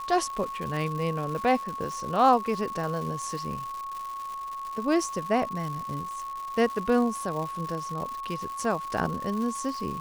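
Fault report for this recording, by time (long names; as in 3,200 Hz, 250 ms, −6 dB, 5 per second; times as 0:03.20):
surface crackle 290 per second −34 dBFS
whistle 1,100 Hz −33 dBFS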